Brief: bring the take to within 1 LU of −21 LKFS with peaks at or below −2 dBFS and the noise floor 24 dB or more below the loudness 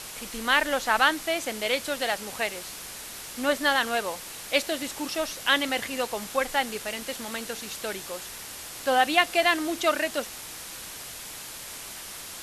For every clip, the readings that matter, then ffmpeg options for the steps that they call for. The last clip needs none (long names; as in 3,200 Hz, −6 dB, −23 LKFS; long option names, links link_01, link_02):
background noise floor −40 dBFS; target noise floor −52 dBFS; integrated loudness −27.5 LKFS; sample peak −4.5 dBFS; target loudness −21.0 LKFS
→ -af "afftdn=noise_reduction=12:noise_floor=-40"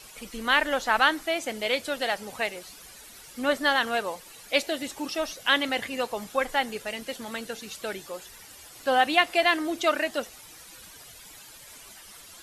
background noise floor −48 dBFS; target noise floor −51 dBFS
→ -af "afftdn=noise_reduction=6:noise_floor=-48"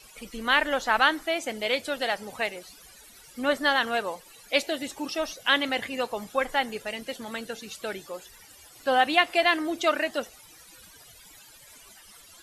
background noise floor −52 dBFS; integrated loudness −26.5 LKFS; sample peak −5.0 dBFS; target loudness −21.0 LKFS
→ -af "volume=5.5dB,alimiter=limit=-2dB:level=0:latency=1"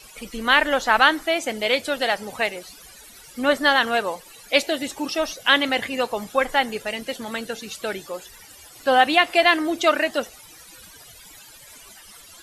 integrated loudness −21.0 LKFS; sample peak −2.0 dBFS; background noise floor −46 dBFS